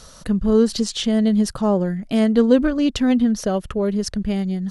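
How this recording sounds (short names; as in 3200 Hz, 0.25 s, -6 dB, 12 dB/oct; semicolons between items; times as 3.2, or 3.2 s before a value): noise floor -44 dBFS; spectral tilt -6.0 dB/oct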